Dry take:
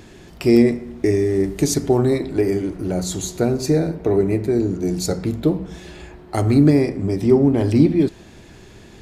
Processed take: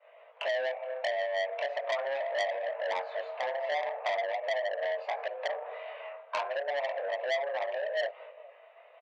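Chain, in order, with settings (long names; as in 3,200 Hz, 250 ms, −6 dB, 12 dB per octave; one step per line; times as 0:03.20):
spectral magnitudes quantised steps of 15 dB
downward expander −35 dBFS
in parallel at 0 dB: brickwall limiter −13.5 dBFS, peak gain reduction 10 dB
on the sum: downward compressor 20 to 1, threshold −18 dBFS, peak gain reduction 13.5 dB
on a send: single-tap delay 425 ms −21.5 dB
on the sum: single-sideband voice off tune +280 Hz 260–2,500 Hz
chorus effect 0.39 Hz, delay 18.5 ms, depth 5.6 ms
saturating transformer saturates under 2,600 Hz
level −2 dB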